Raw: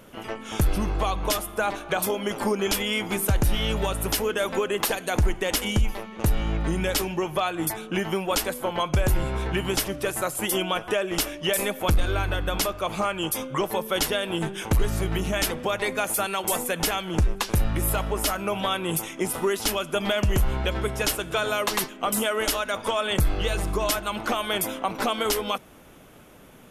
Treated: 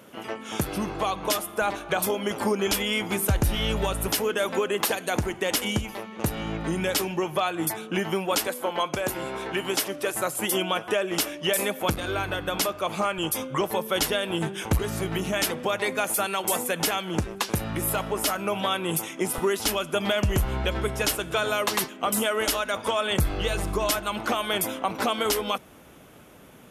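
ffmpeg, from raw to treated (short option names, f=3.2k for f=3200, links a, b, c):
-af "asetnsamples=n=441:p=0,asendcmd='1.62 highpass f 42;4.08 highpass f 120;8.47 highpass f 260;10.15 highpass f 130;13.18 highpass f 51;14.78 highpass f 120;19.38 highpass f 50',highpass=140"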